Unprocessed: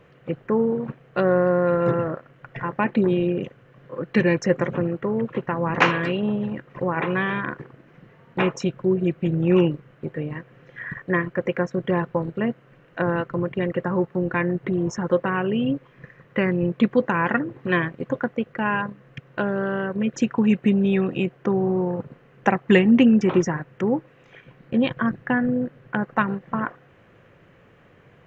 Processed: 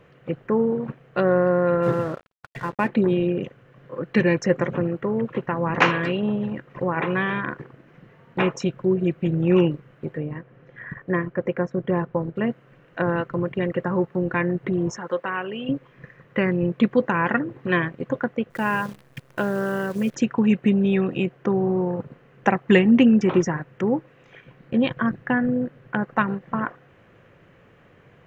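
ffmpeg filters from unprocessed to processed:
ffmpeg -i in.wav -filter_complex "[0:a]asplit=3[link_01][link_02][link_03];[link_01]afade=type=out:start_time=1.82:duration=0.02[link_04];[link_02]aeval=exprs='sgn(val(0))*max(abs(val(0))-0.00668,0)':channel_layout=same,afade=type=in:start_time=1.82:duration=0.02,afade=type=out:start_time=2.87:duration=0.02[link_05];[link_03]afade=type=in:start_time=2.87:duration=0.02[link_06];[link_04][link_05][link_06]amix=inputs=3:normalize=0,asettb=1/sr,asplit=3[link_07][link_08][link_09];[link_07]atrim=end=10.174[link_10];[link_08]atrim=start=10.17:end=12.36,asetpts=PTS-STARTPTS,afade=type=in:duration=0.004:curve=qsin,afade=type=out:start_time=2.186:duration=0.004:curve=qsin,highshelf=frequency=2100:gain=-10.5[link_11];[link_09]atrim=start=12.356[link_12];[link_10][link_11]acrossfade=duration=0.004:curve1=hsin:curve2=qsin[link_13];[link_13][link_12]acrossfade=duration=0.004:curve1=qsin:curve2=hsin,asettb=1/sr,asplit=3[link_14][link_15][link_16];[link_14]atrim=end=14.974[link_17];[link_15]atrim=start=14.97:end=15.69,asetpts=PTS-STARTPTS,afade=type=in:duration=0.004:curve=qsin,afade=type=out:start_time=0.716:duration=0.004:curve=qsin,highpass=frequency=770:poles=1[link_18];[link_16]atrim=start=15.686[link_19];[link_17][link_18]acrossfade=duration=0.004:curve1=hsin:curve2=qsin[link_20];[link_20][link_19]acrossfade=duration=0.004:curve1=qsin:curve2=hsin,asettb=1/sr,asplit=3[link_21][link_22][link_23];[link_21]atrim=end=18.504[link_24];[link_22]atrim=start=18.5:end=20.15,asetpts=PTS-STARTPTS,afade=type=in:duration=0.004:curve=qsin,afade=type=out:start_time=1.646:duration=0.004:curve=qsin,acrusher=bits=8:dc=4:mix=0:aa=0.000001[link_25];[link_23]atrim=start=20.146[link_26];[link_24][link_25]acrossfade=duration=0.004:curve1=hsin:curve2=qsin[link_27];[link_27][link_26]acrossfade=duration=0.004:curve1=qsin:curve2=hsin" out.wav

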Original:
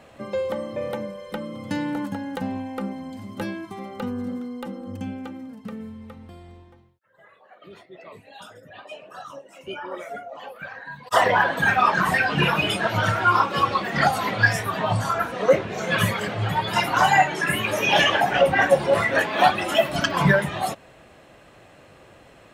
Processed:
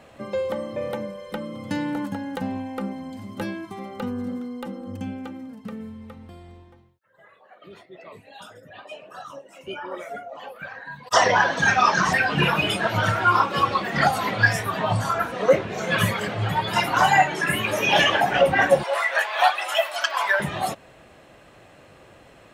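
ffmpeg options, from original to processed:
ffmpeg -i in.wav -filter_complex "[0:a]asettb=1/sr,asplit=3[link_01][link_02][link_03];[link_01]atrim=end=11.134[link_04];[link_02]atrim=start=11.13:end=12.13,asetpts=PTS-STARTPTS,afade=type=in:duration=0.004:curve=qsin,afade=type=out:start_time=0.996:duration=0.004:curve=qsin,lowpass=frequency=5900:width_type=q:width=6.7[link_05];[link_03]atrim=start=12.126[link_06];[link_04][link_05]acrossfade=duration=0.004:curve1=hsin:curve2=qsin[link_07];[link_07][link_06]acrossfade=duration=0.004:curve1=qsin:curve2=hsin,asettb=1/sr,asplit=3[link_08][link_09][link_10];[link_08]atrim=end=18.834[link_11];[link_09]atrim=start=18.83:end=20.4,asetpts=PTS-STARTPTS,afade=type=in:duration=0.004:curve=qsin,afade=type=out:start_time=1.566:duration=0.004:curve=qsin,highpass=frequency=660:width=0.5412,highpass=frequency=660:width=1.3066[link_12];[link_10]atrim=start=20.396[link_13];[link_11][link_12]acrossfade=duration=0.004:curve1=hsin:curve2=qsin[link_14];[link_14][link_13]acrossfade=duration=0.004:curve1=qsin:curve2=hsin" out.wav

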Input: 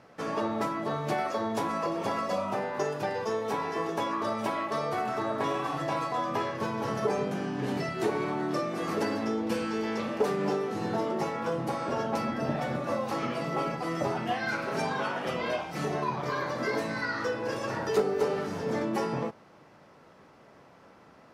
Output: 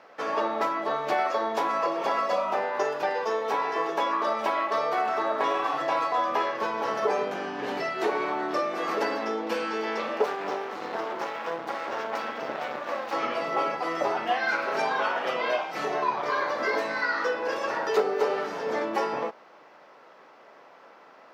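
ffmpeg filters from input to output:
ffmpeg -i in.wav -filter_complex "[0:a]asettb=1/sr,asplit=3[link_01][link_02][link_03];[link_01]atrim=end=10.244[link_04];[link_02]atrim=start=10.24:end=13.13,asetpts=PTS-STARTPTS,afade=type=in:duration=0.004:curve=qsin,afade=type=out:start_time=2.886:duration=0.004:curve=qsin,aeval=exprs='max(val(0),0)':channel_layout=same[link_05];[link_03]atrim=start=13.126[link_06];[link_04][link_05]acrossfade=duration=0.004:curve1=hsin:curve2=qsin[link_07];[link_07][link_06]acrossfade=duration=0.004:curve1=qsin:curve2=hsin,highpass=490,equalizer=frequency=9700:width_type=o:width=1.1:gain=-14,volume=6dB" out.wav

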